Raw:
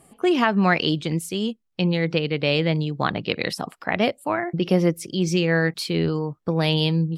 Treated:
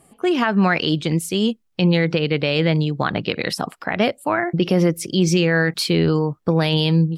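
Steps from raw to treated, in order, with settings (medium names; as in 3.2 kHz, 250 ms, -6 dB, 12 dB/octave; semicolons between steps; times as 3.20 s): dynamic bell 1.5 kHz, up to +4 dB, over -40 dBFS, Q 3.3; level rider; loudness maximiser +6.5 dB; trim -6.5 dB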